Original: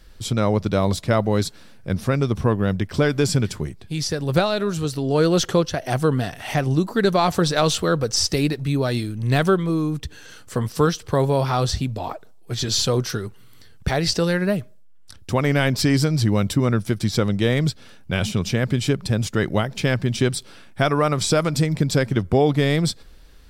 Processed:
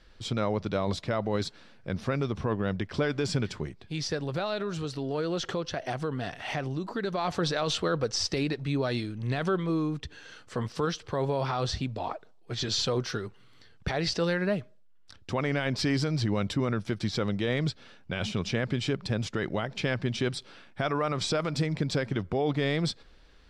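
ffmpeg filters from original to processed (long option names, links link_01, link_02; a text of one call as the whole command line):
ffmpeg -i in.wav -filter_complex "[0:a]asettb=1/sr,asplit=3[link_01][link_02][link_03];[link_01]atrim=end=4.234[link_04];[link_02]atrim=start=4.23:end=7.25,asetpts=PTS-STARTPTS,afade=type=in:duration=0.004:curve=qsin,afade=type=out:start_time=3.016:duration=0.004:curve=qsin,acompressor=threshold=-22dB:ratio=4:attack=3.2:release=140:knee=1:detection=peak[link_05];[link_03]atrim=start=7.246[link_06];[link_04][link_05]acrossfade=duration=0.004:curve1=hsin:curve2=qsin[link_07];[link_07][link_06]acrossfade=duration=0.004:curve1=qsin:curve2=hsin,lowpass=4600,lowshelf=frequency=220:gain=-7,alimiter=limit=-15dB:level=0:latency=1:release=30,volume=-3.5dB" out.wav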